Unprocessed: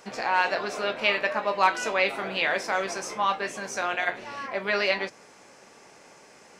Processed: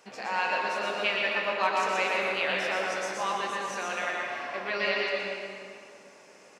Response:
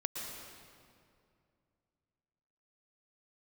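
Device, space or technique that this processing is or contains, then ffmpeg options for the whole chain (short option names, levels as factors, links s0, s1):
PA in a hall: -filter_complex "[0:a]highpass=f=150:p=1,equalizer=f=2700:t=o:w=0.35:g=4,aecho=1:1:121:0.562[s0];[1:a]atrim=start_sample=2205[s1];[s0][s1]afir=irnorm=-1:irlink=0,volume=0.501"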